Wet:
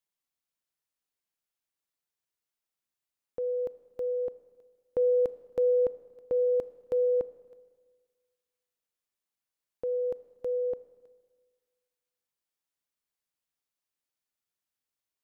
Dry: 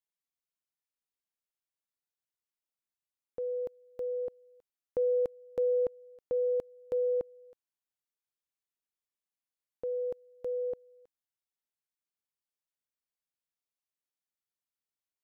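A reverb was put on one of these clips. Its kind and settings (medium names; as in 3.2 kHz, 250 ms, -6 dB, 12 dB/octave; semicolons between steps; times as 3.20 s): Schroeder reverb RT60 1.6 s, combs from 26 ms, DRR 16 dB; trim +3 dB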